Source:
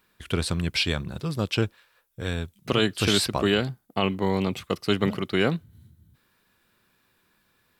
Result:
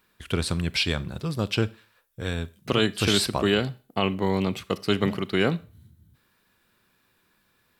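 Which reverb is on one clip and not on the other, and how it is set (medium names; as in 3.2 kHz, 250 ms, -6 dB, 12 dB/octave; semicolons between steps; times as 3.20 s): Schroeder reverb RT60 0.38 s, combs from 28 ms, DRR 18.5 dB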